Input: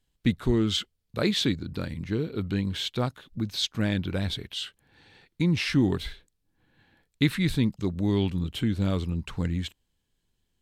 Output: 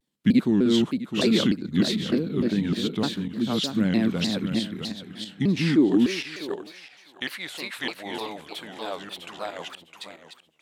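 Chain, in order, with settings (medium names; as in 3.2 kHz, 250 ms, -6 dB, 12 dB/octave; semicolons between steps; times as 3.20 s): backward echo that repeats 328 ms, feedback 43%, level 0 dB; high-pass sweep 210 Hz -> 700 Hz, 5.53–6.99 s; vibrato with a chosen wave saw down 3.3 Hz, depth 250 cents; trim -2 dB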